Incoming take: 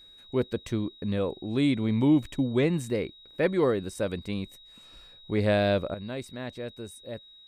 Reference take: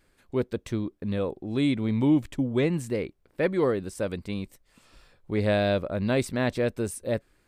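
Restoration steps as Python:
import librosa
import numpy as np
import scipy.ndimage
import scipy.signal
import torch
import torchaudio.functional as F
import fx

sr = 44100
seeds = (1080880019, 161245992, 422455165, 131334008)

y = fx.notch(x, sr, hz=3800.0, q=30.0)
y = fx.gain(y, sr, db=fx.steps((0.0, 0.0), (5.94, 11.0)))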